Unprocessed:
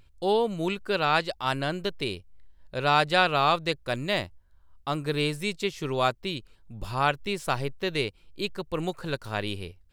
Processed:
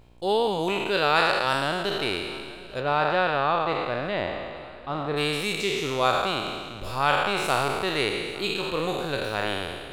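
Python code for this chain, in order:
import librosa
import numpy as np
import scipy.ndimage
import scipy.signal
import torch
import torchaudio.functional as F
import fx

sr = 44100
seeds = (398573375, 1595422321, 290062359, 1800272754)

y = fx.spec_trails(x, sr, decay_s=1.79)
y = fx.low_shelf(y, sr, hz=210.0, db=-4.5)
y = fx.dmg_buzz(y, sr, base_hz=60.0, harmonics=18, level_db=-56.0, tilt_db=-5, odd_only=False)
y = fx.spacing_loss(y, sr, db_at_10k=30, at=(2.79, 5.16), fade=0.02)
y = fx.echo_feedback(y, sr, ms=848, feedback_pct=52, wet_db=-20.5)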